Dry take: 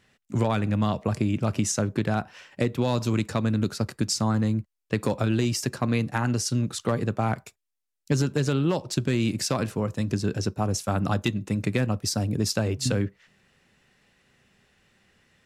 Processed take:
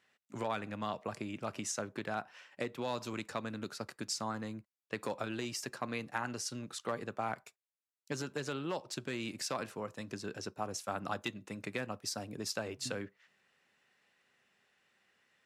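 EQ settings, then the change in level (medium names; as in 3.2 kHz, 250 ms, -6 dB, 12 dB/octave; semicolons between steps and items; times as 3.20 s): high-pass 1.2 kHz 6 dB/octave; treble shelf 2.2 kHz -9 dB; -2.0 dB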